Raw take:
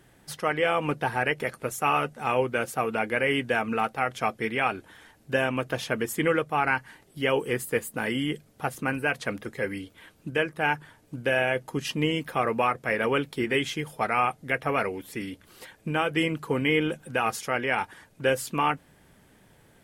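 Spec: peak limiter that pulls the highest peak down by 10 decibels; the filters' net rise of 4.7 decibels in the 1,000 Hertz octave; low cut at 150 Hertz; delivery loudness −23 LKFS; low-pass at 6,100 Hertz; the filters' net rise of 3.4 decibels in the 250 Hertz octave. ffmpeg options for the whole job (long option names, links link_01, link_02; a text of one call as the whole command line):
ffmpeg -i in.wav -af "highpass=150,lowpass=6100,equalizer=frequency=250:width_type=o:gain=4.5,equalizer=frequency=1000:width_type=o:gain=6,volume=6.5dB,alimiter=limit=-11dB:level=0:latency=1" out.wav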